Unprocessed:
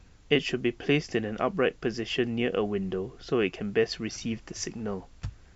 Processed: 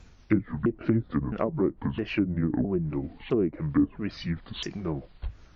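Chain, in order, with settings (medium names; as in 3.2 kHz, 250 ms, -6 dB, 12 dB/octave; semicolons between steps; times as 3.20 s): sawtooth pitch modulation -10 st, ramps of 661 ms; low-pass that closes with the level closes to 460 Hz, closed at -24 dBFS; trim +3 dB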